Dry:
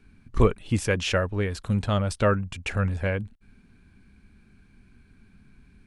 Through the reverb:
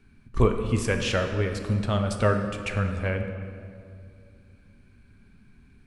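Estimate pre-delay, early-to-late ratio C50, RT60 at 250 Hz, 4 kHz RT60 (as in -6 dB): 3 ms, 6.5 dB, 2.8 s, 1.5 s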